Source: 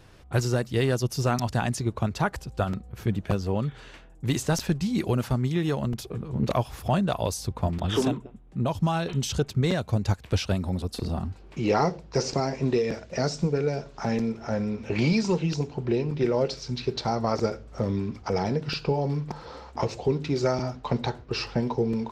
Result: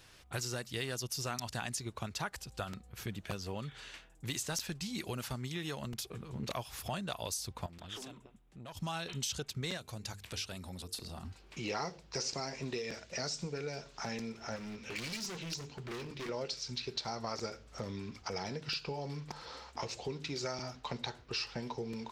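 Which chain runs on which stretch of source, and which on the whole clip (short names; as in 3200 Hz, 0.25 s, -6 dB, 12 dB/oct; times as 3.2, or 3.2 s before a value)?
7.66–8.77 compressor 3:1, threshold -35 dBFS + tube stage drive 29 dB, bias 0.6
9.77–11.25 bell 11000 Hz +3.5 dB 1.4 oct + compressor 1.5:1, threshold -39 dBFS + notches 50/100/150/200/250/300/350/400/450 Hz
14.56–16.29 notches 50/100/150/200/250 Hz + overloaded stage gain 28.5 dB + bell 760 Hz -4.5 dB 0.92 oct
whole clip: tilt shelf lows -7.5 dB, about 1300 Hz; compressor 2:1, threshold -34 dBFS; gain -4.5 dB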